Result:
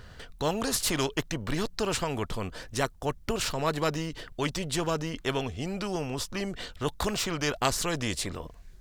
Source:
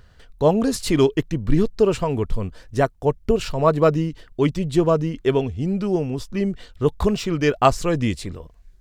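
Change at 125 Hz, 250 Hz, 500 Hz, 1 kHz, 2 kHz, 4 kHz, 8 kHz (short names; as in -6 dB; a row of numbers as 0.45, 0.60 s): -11.0, -11.5, -12.0, -8.0, -2.0, +1.0, +3.5 dB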